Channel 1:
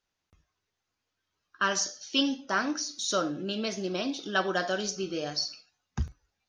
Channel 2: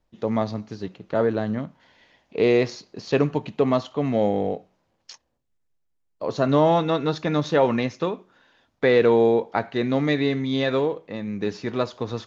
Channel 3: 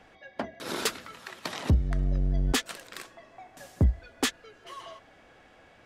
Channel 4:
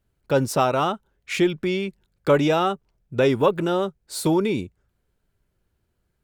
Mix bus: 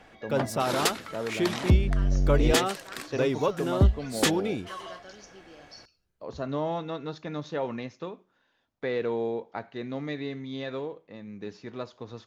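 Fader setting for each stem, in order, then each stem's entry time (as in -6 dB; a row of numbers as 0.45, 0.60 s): -18.5, -12.0, +2.5, -7.5 dB; 0.35, 0.00, 0.00, 0.00 s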